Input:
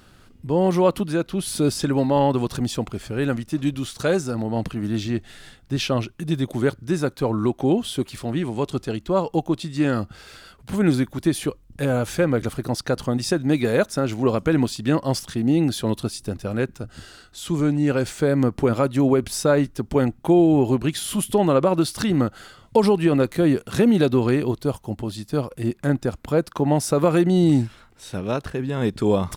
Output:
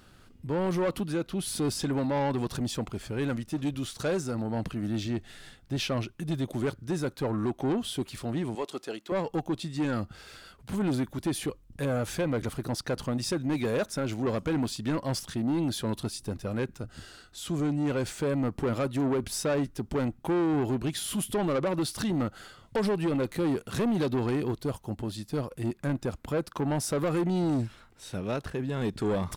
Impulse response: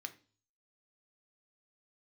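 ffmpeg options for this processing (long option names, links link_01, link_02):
-filter_complex "[0:a]asettb=1/sr,asplit=3[link_01][link_02][link_03];[link_01]atrim=end=8.554[link_04];[link_02]atrim=start=8.55:end=9.12,asetpts=PTS-STARTPTS,afade=type=in:duration=0.004:curve=qsin,afade=type=out:start_time=0.566:duration=0.004:curve=qsin,highpass=390[link_05];[link_03]atrim=start=9.116[link_06];[link_04][link_05]acrossfade=duration=0.004:curve1=hsin:curve2=qsin[link_07];[link_07][link_06]acrossfade=duration=0.004:curve1=qsin:curve2=hsin,asoftclip=type=tanh:threshold=-18.5dB,volume=-4.5dB"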